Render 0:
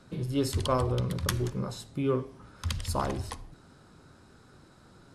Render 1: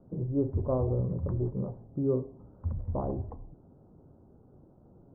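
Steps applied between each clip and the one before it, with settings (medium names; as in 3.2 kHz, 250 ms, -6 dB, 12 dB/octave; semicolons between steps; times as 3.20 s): inverse Chebyshev low-pass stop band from 3.3 kHz, stop band 70 dB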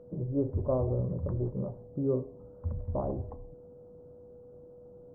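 peaking EQ 590 Hz +6.5 dB 0.21 oct; whistle 490 Hz -48 dBFS; trim -1.5 dB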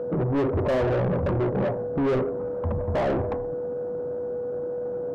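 overdrive pedal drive 33 dB, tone 1.2 kHz, clips at -17.5 dBFS; trim +1.5 dB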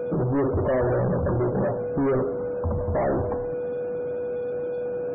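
jump at every zero crossing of -39 dBFS; loudest bins only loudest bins 64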